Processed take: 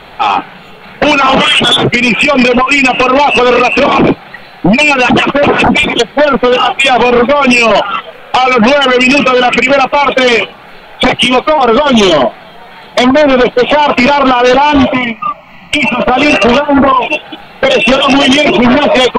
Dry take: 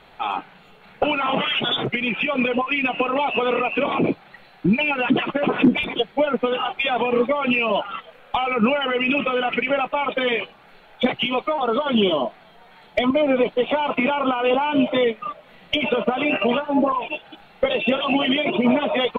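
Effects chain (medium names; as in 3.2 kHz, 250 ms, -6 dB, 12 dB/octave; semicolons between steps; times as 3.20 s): 14.93–16.00 s: static phaser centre 2.4 kHz, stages 8; sine folder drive 11 dB, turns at -4.5 dBFS; trim +2 dB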